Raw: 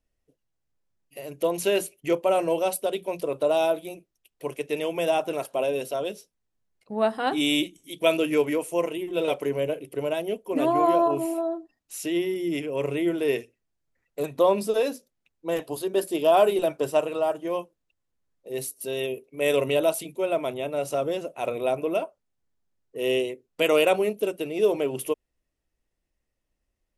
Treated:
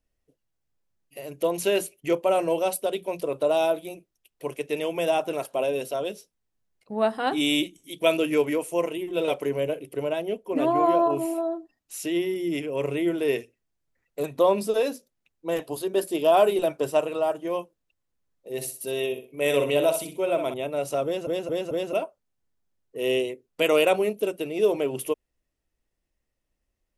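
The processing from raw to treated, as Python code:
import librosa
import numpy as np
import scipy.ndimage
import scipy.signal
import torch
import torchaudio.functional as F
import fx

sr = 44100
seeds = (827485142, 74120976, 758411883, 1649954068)

y = fx.high_shelf(x, sr, hz=5700.0, db=-7.5, at=(10.04, 11.1))
y = fx.echo_feedback(y, sr, ms=63, feedback_pct=26, wet_db=-8, at=(18.5, 20.54))
y = fx.edit(y, sr, fx.stutter_over(start_s=21.05, slice_s=0.22, count=4), tone=tone)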